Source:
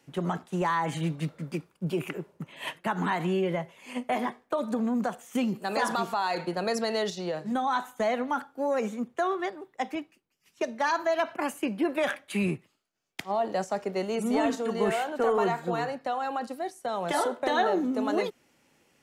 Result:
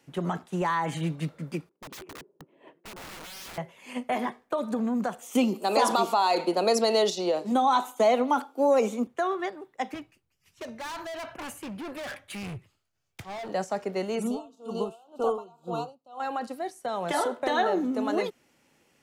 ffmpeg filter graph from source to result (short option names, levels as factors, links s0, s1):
-filter_complex "[0:a]asettb=1/sr,asplit=3[s0][s1][s2];[s0]atrim=end=1.694[s3];[s1]atrim=start=1.69:end=3.58,asetpts=PTS-STARTPTS,afade=t=in:d=0.004:c=qsin,afade=t=out:st=1.886:d=0.004:c=qsin,bandpass=f=360:t=q:w=2.8,aeval=exprs='(mod(79.4*val(0)+1,2)-1)/79.4':c=same[s4];[s2]atrim=start=3.576[s5];[s3][s4]acrossfade=d=0.004:c1=hsin:c2=qsin[s6];[s6][s5]acrossfade=d=0.004:c1=qsin:c2=hsin,asettb=1/sr,asplit=3[s7][s8][s9];[s7]atrim=end=5.224[s10];[s8]atrim=start=5.22:end=9.07,asetpts=PTS-STARTPTS,afade=t=in:d=0.004:c=qsin,afade=t=out:st=3.846:d=0.004:c=qsin,highpass=f=240:w=0.5412,highpass=f=240:w=1.3066,acontrast=69,equalizer=f=1700:t=o:w=0.51:g=-13[s11];[s9]atrim=start=9.066[s12];[s10][s11]acrossfade=d=0.004:c1=hsin:c2=qsin[s13];[s13][s12]acrossfade=d=0.004:c1=qsin:c2=hsin,asettb=1/sr,asplit=3[s14][s15][s16];[s14]atrim=end=9.944[s17];[s15]atrim=start=9.94:end=13.49,asetpts=PTS-STARTPTS,afade=t=in:d=0.004:c=qsin,afade=t=out:st=3.546:d=0.004:c=qsin,lowshelf=f=150:t=q:w=1.5:g=12.5,asoftclip=type=hard:threshold=0.0178[s18];[s16]atrim=start=13.486[s19];[s17][s18]acrossfade=d=0.004:c1=hsin:c2=qsin[s20];[s20][s19]acrossfade=d=0.004:c1=qsin:c2=hsin,asettb=1/sr,asplit=3[s21][s22][s23];[s21]atrim=end=14.274[s24];[s22]atrim=start=14.27:end=16.2,asetpts=PTS-STARTPTS,afade=t=in:d=0.004:c=qsin,afade=t=out:st=1.926:d=0.004:c=qsin,asuperstop=centerf=1900:order=8:qfactor=1.4,aeval=exprs='val(0)*pow(10,-27*(0.5-0.5*cos(2*PI*2*n/s))/20)':c=same[s25];[s23]atrim=start=16.196[s26];[s24][s25]acrossfade=d=0.004:c1=hsin:c2=qsin[s27];[s27][s26]acrossfade=d=0.004:c1=qsin:c2=hsin"